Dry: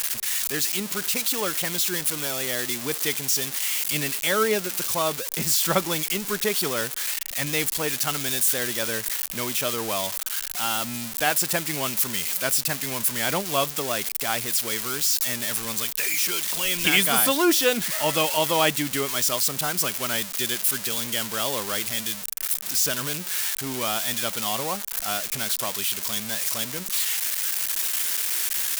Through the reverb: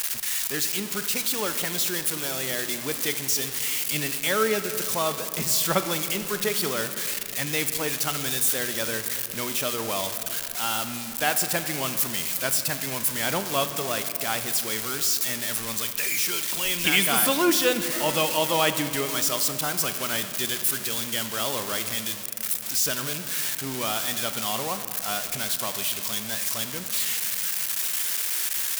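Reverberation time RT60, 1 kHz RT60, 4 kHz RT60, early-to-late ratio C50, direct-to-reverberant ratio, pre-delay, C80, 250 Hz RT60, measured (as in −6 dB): 2.8 s, 2.5 s, 1.5 s, 10.0 dB, 9.0 dB, 30 ms, 10.5 dB, 3.7 s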